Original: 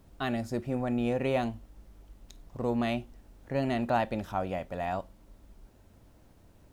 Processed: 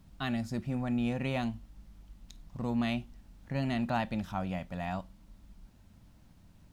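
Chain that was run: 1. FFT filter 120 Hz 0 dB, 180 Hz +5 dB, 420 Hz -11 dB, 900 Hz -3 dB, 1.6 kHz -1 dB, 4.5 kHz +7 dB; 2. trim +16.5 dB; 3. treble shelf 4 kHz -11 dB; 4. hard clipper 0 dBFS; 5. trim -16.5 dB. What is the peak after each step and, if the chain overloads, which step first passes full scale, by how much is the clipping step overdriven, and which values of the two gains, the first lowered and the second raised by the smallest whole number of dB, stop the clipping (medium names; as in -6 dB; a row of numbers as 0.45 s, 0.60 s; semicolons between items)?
-17.5 dBFS, -1.0 dBFS, -2.0 dBFS, -2.0 dBFS, -18.5 dBFS; nothing clips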